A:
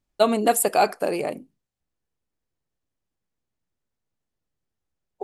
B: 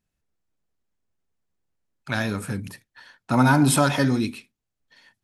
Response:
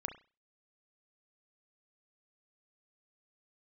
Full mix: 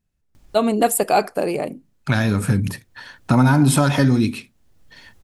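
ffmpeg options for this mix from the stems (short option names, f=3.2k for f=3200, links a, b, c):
-filter_complex "[0:a]acompressor=mode=upward:threshold=-34dB:ratio=2.5,adelay=350,volume=-8dB[a];[1:a]acompressor=threshold=-29dB:ratio=2.5,volume=-0.5dB,asplit=2[b][c];[c]apad=whole_len=246235[d];[a][d]sidechaincompress=threshold=-46dB:ratio=10:attack=16:release=740[e];[e][b]amix=inputs=2:normalize=0,lowshelf=f=220:g=8.5,dynaudnorm=f=140:g=7:m=10dB"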